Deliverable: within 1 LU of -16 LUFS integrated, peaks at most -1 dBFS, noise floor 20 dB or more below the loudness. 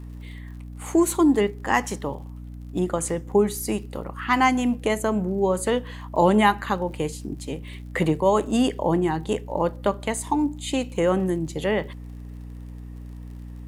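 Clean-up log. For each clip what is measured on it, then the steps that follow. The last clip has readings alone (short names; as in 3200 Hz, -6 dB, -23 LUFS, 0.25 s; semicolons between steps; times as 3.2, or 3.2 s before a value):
ticks 52/s; hum 60 Hz; harmonics up to 300 Hz; hum level -35 dBFS; loudness -23.5 LUFS; peak -5.0 dBFS; loudness target -16.0 LUFS
-> de-click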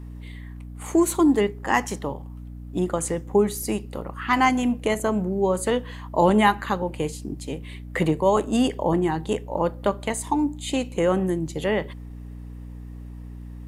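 ticks 0.29/s; hum 60 Hz; harmonics up to 300 Hz; hum level -36 dBFS
-> notches 60/120/180/240/300 Hz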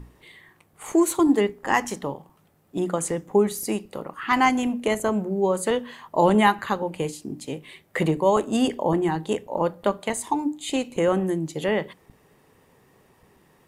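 hum none; loudness -24.0 LUFS; peak -5.0 dBFS; loudness target -16.0 LUFS
-> gain +8 dB; limiter -1 dBFS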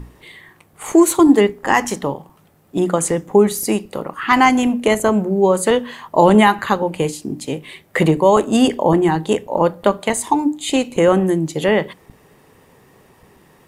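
loudness -16.5 LUFS; peak -1.0 dBFS; noise floor -52 dBFS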